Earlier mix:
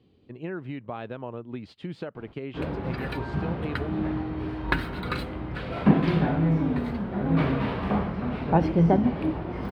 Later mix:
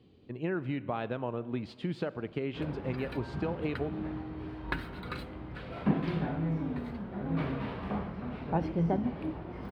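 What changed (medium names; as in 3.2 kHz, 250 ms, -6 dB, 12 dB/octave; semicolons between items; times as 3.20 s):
background -9.0 dB; reverb: on, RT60 1.9 s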